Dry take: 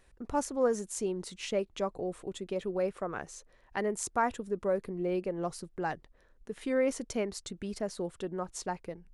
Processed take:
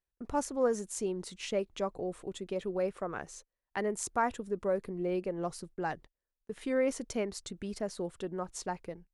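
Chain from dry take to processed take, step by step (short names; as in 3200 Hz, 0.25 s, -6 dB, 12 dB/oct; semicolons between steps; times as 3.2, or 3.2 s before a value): gate -49 dBFS, range -28 dB; gain -1 dB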